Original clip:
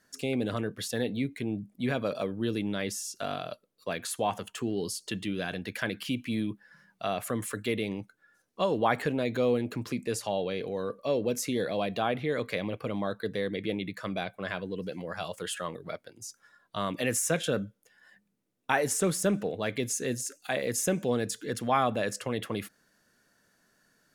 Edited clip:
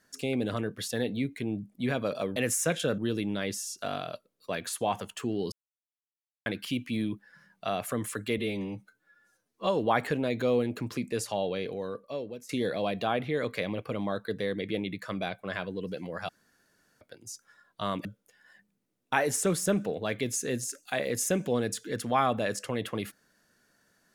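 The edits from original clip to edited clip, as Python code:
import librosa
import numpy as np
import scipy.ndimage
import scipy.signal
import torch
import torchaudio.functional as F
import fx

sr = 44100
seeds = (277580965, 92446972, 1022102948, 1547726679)

y = fx.edit(x, sr, fx.silence(start_s=4.9, length_s=0.94),
    fx.stretch_span(start_s=7.76, length_s=0.86, factor=1.5),
    fx.fade_out_to(start_s=10.56, length_s=0.88, floor_db=-20.0),
    fx.room_tone_fill(start_s=15.24, length_s=0.72),
    fx.move(start_s=17.0, length_s=0.62, to_s=2.36), tone=tone)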